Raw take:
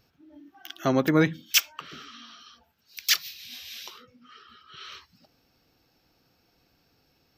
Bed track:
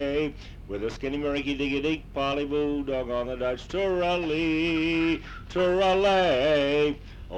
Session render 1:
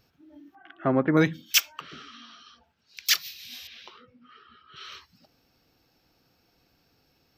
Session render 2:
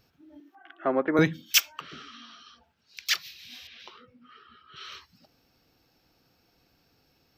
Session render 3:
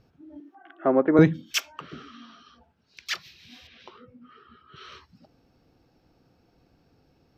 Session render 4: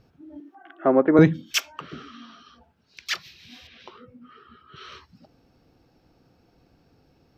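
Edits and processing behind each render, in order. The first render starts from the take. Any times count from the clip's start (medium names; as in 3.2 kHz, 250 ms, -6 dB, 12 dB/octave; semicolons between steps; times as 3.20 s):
0.55–1.17 s: low-pass 2 kHz 24 dB/octave; 1.80–3.06 s: distance through air 63 m; 3.67–4.76 s: distance through air 250 m
0.40–1.19 s: Chebyshev high-pass 400 Hz; 3.04–3.80 s: treble shelf 5.7 kHz -11.5 dB
low-pass 11 kHz 12 dB/octave; tilt shelf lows +7 dB, about 1.3 kHz
trim +2.5 dB; peak limiter -3 dBFS, peak gain reduction 1.5 dB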